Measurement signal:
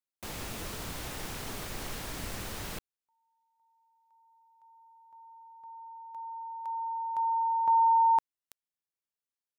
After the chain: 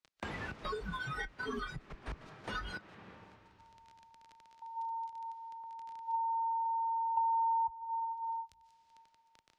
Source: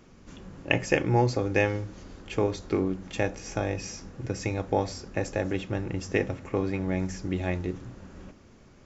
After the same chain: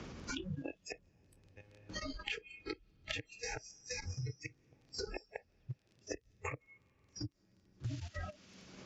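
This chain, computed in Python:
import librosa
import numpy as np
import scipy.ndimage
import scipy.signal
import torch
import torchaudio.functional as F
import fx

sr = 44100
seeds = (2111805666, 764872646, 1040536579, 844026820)

y = fx.low_shelf(x, sr, hz=71.0, db=9.0)
y = fx.hum_notches(y, sr, base_hz=60, count=6)
y = fx.gate_flip(y, sr, shuts_db=-23.0, range_db=-39)
y = scipy.signal.sosfilt(scipy.signal.butter(4, 45.0, 'highpass', fs=sr, output='sos'), y)
y = fx.echo_wet_highpass(y, sr, ms=189, feedback_pct=45, hz=4500.0, wet_db=-15)
y = fx.dynamic_eq(y, sr, hz=600.0, q=2.7, threshold_db=-55.0, ratio=6.0, max_db=-4)
y = fx.level_steps(y, sr, step_db=15)
y = fx.dmg_crackle(y, sr, seeds[0], per_s=19.0, level_db=-53.0)
y = fx.rev_freeverb(y, sr, rt60_s=2.0, hf_ratio=0.8, predelay_ms=105, drr_db=11.0)
y = fx.noise_reduce_blind(y, sr, reduce_db=27)
y = scipy.signal.sosfilt(scipy.signal.cheby1(2, 1.0, 5000.0, 'lowpass', fs=sr, output='sos'), y)
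y = fx.band_squash(y, sr, depth_pct=100)
y = F.gain(torch.from_numpy(y), 11.5).numpy()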